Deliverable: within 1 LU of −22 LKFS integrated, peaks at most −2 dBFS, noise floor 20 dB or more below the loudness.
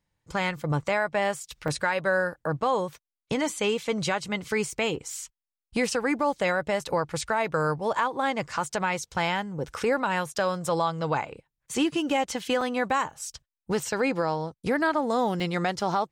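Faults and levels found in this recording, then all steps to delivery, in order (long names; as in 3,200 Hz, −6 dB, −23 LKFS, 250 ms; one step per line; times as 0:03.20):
number of dropouts 3; longest dropout 2.7 ms; integrated loudness −27.5 LKFS; sample peak −12.5 dBFS; target loudness −22.0 LKFS
→ repair the gap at 0:01.68/0:12.61/0:15.40, 2.7 ms
level +5.5 dB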